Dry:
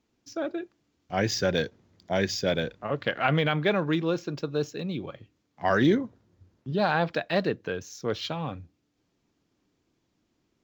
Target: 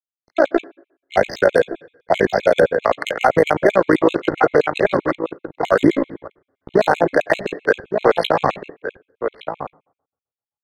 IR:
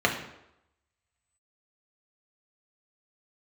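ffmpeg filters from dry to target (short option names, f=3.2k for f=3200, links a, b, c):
-filter_complex "[0:a]tremolo=f=57:d=0.788,acrossover=split=390 3200:gain=0.141 1 0.2[a][b][c];[a][b][c]amix=inputs=3:normalize=0,aeval=exprs='sgn(val(0))*max(abs(val(0))-0.00316,0)':c=same,equalizer=f=4.5k:w=0.36:g=2.5,adynamicsmooth=sensitivity=6:basefreq=1.9k,asplit=2[d][e];[e]adelay=1166,volume=-12dB,highshelf=f=4k:g=-26.2[f];[d][f]amix=inputs=2:normalize=0,asplit=2[g][h];[1:a]atrim=start_sample=2205,asetrate=52920,aresample=44100[i];[h][i]afir=irnorm=-1:irlink=0,volume=-30dB[j];[g][j]amix=inputs=2:normalize=0,acrossover=split=640|1400[k][l][m];[k]acompressor=threshold=-33dB:ratio=4[n];[l]acompressor=threshold=-44dB:ratio=4[o];[m]acompressor=threshold=-48dB:ratio=4[p];[n][o][p]amix=inputs=3:normalize=0,alimiter=level_in=29dB:limit=-1dB:release=50:level=0:latency=1,afftfilt=real='re*gt(sin(2*PI*7.7*pts/sr)*(1-2*mod(floor(b*sr/1024/2100),2)),0)':imag='im*gt(sin(2*PI*7.7*pts/sr)*(1-2*mod(floor(b*sr/1024/2100),2)),0)':win_size=1024:overlap=0.75,volume=-1dB"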